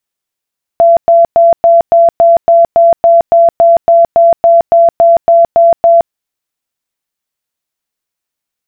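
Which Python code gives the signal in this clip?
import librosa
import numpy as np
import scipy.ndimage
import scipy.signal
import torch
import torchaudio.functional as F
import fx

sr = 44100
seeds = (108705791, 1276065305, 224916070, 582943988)

y = fx.tone_burst(sr, hz=676.0, cycles=114, every_s=0.28, bursts=19, level_db=-2.0)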